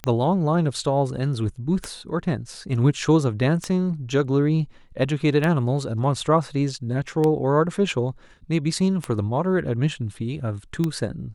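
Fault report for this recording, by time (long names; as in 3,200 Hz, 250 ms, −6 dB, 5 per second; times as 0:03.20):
scratch tick 33 1/3 rpm −11 dBFS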